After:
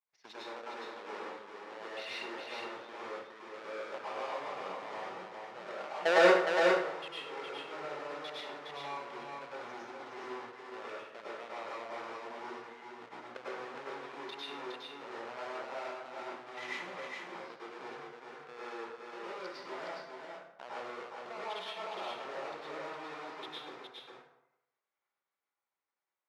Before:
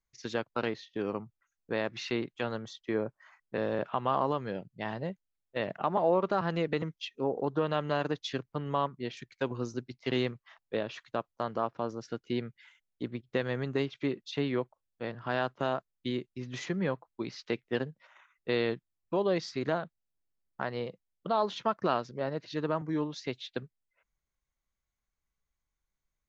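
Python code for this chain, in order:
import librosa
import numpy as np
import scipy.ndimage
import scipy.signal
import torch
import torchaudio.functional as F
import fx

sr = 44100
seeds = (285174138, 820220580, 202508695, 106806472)

p1 = fx.halfwave_hold(x, sr)
p2 = fx.high_shelf(p1, sr, hz=2900.0, db=-8.0)
p3 = fx.level_steps(p2, sr, step_db=22)
p4 = fx.bandpass_edges(p3, sr, low_hz=650.0, high_hz=4300.0)
p5 = p4 + fx.echo_single(p4, sr, ms=413, db=-4.0, dry=0)
y = fx.rev_plate(p5, sr, seeds[0], rt60_s=0.78, hf_ratio=0.65, predelay_ms=90, drr_db=-7.5)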